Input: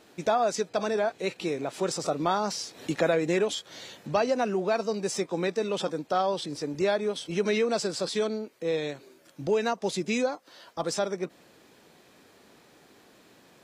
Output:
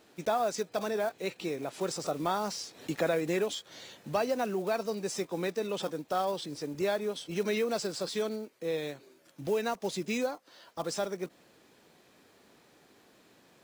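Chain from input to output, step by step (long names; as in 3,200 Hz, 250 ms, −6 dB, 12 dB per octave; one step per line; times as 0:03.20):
one scale factor per block 5 bits
level −4.5 dB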